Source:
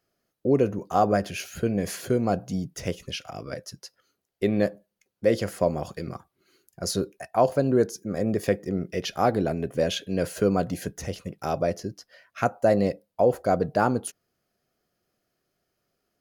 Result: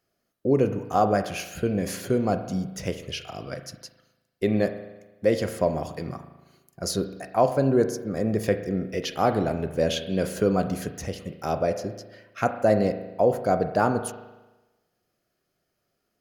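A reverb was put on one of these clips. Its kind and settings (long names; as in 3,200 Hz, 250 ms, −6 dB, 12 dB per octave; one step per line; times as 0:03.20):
spring reverb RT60 1.1 s, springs 37 ms, chirp 30 ms, DRR 8.5 dB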